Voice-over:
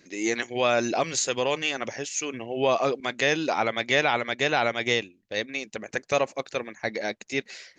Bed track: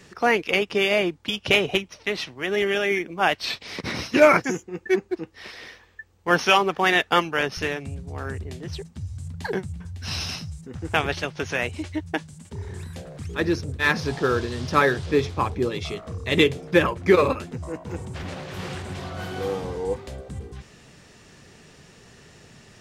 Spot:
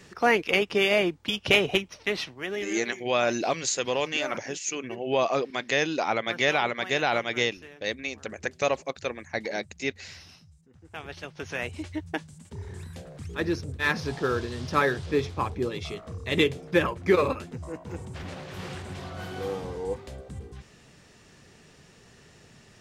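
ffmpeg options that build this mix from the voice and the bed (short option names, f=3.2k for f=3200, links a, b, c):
-filter_complex "[0:a]adelay=2500,volume=-1.5dB[a];[1:a]volume=14.5dB,afade=t=out:st=2.16:d=0.66:silence=0.112202,afade=t=in:st=10.91:d=0.89:silence=0.158489[b];[a][b]amix=inputs=2:normalize=0"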